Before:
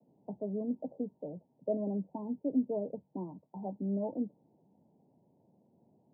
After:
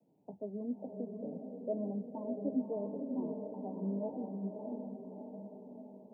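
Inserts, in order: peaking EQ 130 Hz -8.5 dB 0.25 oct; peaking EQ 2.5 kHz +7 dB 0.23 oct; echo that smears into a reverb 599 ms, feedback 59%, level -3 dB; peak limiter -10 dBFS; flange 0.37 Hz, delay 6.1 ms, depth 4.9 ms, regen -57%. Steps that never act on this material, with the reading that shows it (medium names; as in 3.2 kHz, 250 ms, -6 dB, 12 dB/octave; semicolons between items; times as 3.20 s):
peaking EQ 2.5 kHz: input has nothing above 960 Hz; peak limiter -10 dBFS: peak at its input -19.5 dBFS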